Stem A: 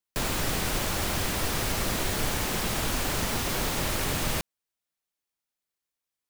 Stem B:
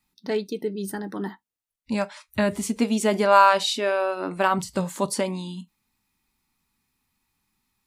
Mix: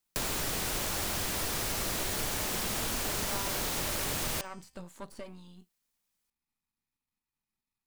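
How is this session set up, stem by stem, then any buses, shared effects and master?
+2.5 dB, 0.00 s, no send, tone controls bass -3 dB, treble +4 dB; de-hum 259.2 Hz, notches 34
-14.0 dB, 0.00 s, no send, half-wave gain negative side -12 dB; de-esser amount 65%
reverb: off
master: compressor 2:1, threshold -36 dBFS, peak gain reduction 8.5 dB

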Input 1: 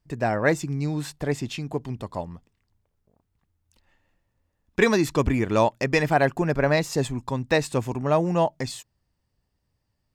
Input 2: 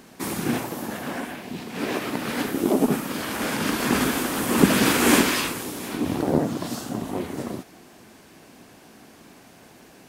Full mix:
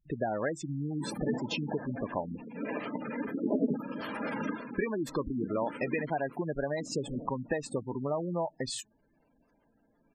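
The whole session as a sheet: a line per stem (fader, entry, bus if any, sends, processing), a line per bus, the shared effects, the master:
+2.5 dB, 0.00 s, no send, compressor 12:1, threshold -29 dBFS, peak gain reduction 16.5 dB
4.49 s -5 dB -> 4.71 s -17.5 dB, 0.80 s, no send, notch comb 370 Hz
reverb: off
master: spectral gate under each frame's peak -15 dB strong; bell 81 Hz -12 dB 1.5 oct

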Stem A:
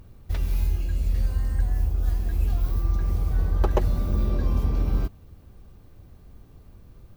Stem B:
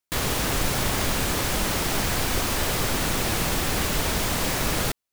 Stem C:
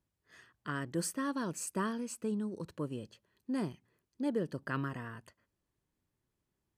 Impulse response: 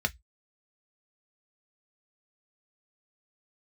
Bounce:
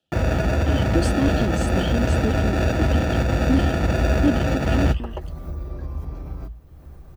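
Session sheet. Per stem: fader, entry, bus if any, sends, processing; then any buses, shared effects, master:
-1.0 dB, 1.40 s, bus A, send -12.5 dB, upward compressor, threshold -32 dBFS; compressor, threshold -24 dBFS, peak gain reduction 8.5 dB
-0.5 dB, 0.00 s, bus A, send -4 dB, sample-and-hold 42×
+0.5 dB, 0.00 s, no bus, no send, resonant high shelf 2200 Hz +12 dB, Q 3; LFO high-pass square 3.9 Hz 280–2900 Hz; tilt -4.5 dB/oct
bus A: 0.0 dB, compressor, threshold -26 dBFS, peak gain reduction 8.5 dB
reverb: on, RT60 0.10 s, pre-delay 3 ms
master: dry

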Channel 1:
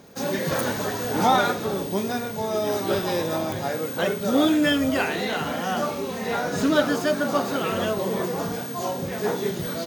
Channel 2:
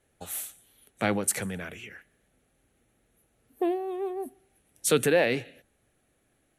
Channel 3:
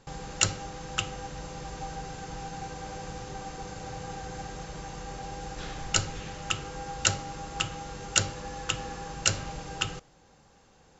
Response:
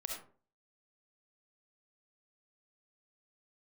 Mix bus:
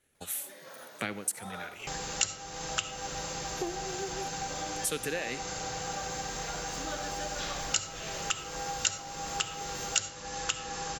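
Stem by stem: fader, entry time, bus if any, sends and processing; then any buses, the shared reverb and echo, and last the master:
-16.0 dB, 0.15 s, send -5 dB, low shelf 260 Hz -11.5 dB; auto duck -16 dB, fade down 0.25 s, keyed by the second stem
0.0 dB, 0.00 s, send -13.5 dB, bell 710 Hz -8 dB 1.3 oct; transient shaper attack +4 dB, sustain -10 dB
+2.5 dB, 1.80 s, send -6.5 dB, high shelf 3900 Hz +9 dB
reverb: on, RT60 0.45 s, pre-delay 25 ms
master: low shelf 350 Hz -8 dB; compressor 2.5:1, threshold -33 dBFS, peak gain reduction 17.5 dB

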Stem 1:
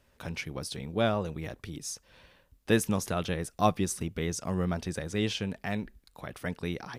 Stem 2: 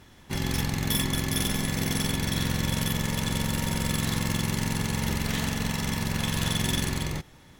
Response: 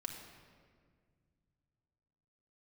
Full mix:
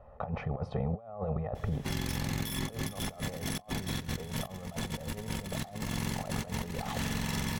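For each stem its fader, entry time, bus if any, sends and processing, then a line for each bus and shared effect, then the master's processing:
+2.5 dB, 0.00 s, send -17 dB, comb 1.6 ms, depth 99%; compressor 8:1, threshold -29 dBFS, peak gain reduction 14 dB; synth low-pass 880 Hz, resonance Q 4.9
-4.5 dB, 1.55 s, no send, dry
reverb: on, RT60 1.9 s, pre-delay 4 ms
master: negative-ratio compressor -33 dBFS, ratio -0.5; limiter -22.5 dBFS, peak gain reduction 6.5 dB

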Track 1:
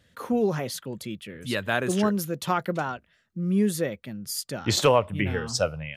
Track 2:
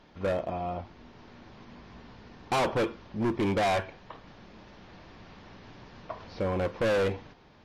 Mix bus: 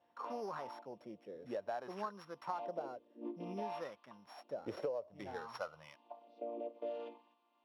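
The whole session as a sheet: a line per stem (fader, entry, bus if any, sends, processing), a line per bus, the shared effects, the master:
-1.0 dB, 0.00 s, no send, sample sorter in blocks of 8 samples
-5.0 dB, 0.00 s, no send, chord vocoder major triad, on A#3; resonant high shelf 2200 Hz +10 dB, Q 3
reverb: off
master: wah 0.57 Hz 520–1100 Hz, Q 3.4; compressor 8:1, threshold -37 dBFS, peak gain reduction 17 dB

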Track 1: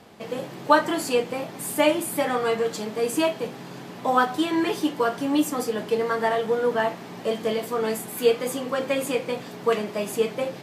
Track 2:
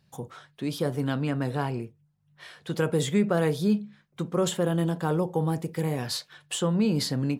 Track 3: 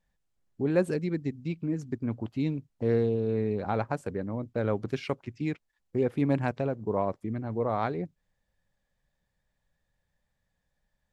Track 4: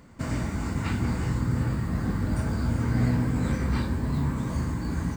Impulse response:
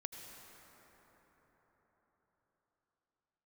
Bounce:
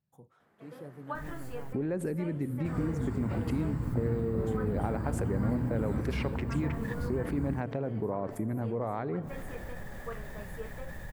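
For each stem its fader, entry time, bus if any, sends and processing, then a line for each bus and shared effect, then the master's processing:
-19.5 dB, 0.40 s, bus A, no send, bell 1400 Hz +10 dB 0.75 oct
-18.0 dB, 0.00 s, no bus, no send, dry
-4.0 dB, 1.15 s, bus A, send -14 dB, fast leveller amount 70%
-7.5 dB, 2.45 s, no bus, no send, bell 6500 Hz -7.5 dB 0.26 oct
bus A: 0.0 dB, bell 1900 Hz +6 dB 0.41 oct; compressor, threshold -31 dBFS, peak gain reduction 10.5 dB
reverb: on, RT60 5.0 s, pre-delay 73 ms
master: bell 4500 Hz -11 dB 2.4 oct

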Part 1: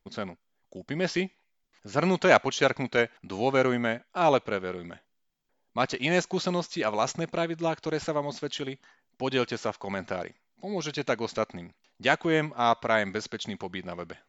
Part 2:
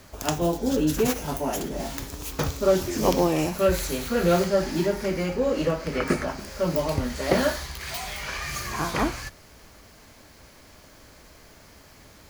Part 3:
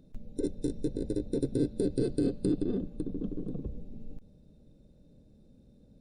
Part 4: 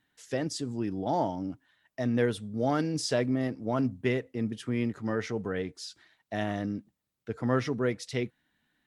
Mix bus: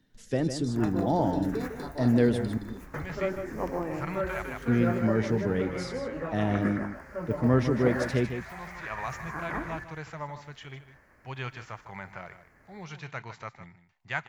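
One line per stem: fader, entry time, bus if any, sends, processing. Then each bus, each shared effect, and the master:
-7.5 dB, 2.05 s, no send, echo send -12.5 dB, graphic EQ 125/250/500/1000/2000/4000 Hz +10/-9/-6/+7/+8/-6 dB; harmonic-percussive split percussive -6 dB; auto duck -14 dB, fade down 0.65 s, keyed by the fourth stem
-11.5 dB, 0.55 s, no send, echo send -7.5 dB, resonant high shelf 2500 Hz -11.5 dB, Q 3
-13.5 dB, 0.00 s, no send, no echo send, band shelf 4700 Hz +15 dB 1.3 oct
-2.0 dB, 0.00 s, muted 2.58–4.62, no send, echo send -9 dB, low shelf 430 Hz +9.5 dB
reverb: off
echo: echo 0.154 s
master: dry

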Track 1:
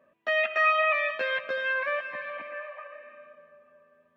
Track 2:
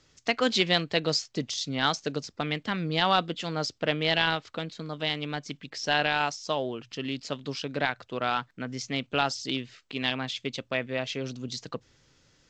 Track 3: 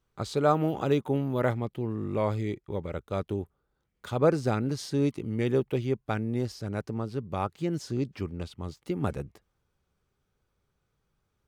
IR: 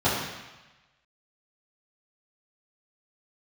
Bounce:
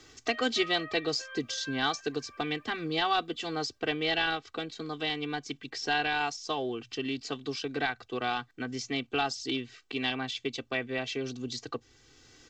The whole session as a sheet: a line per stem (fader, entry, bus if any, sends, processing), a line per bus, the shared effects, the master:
-20.0 dB, 0.00 s, no send, reverb removal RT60 0.55 s; bit-crush 11-bit
-5.5 dB, 0.00 s, no send, bell 230 Hz +7 dB 0.32 oct
off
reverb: off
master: comb 2.6 ms, depth 91%; three-band squash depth 40%

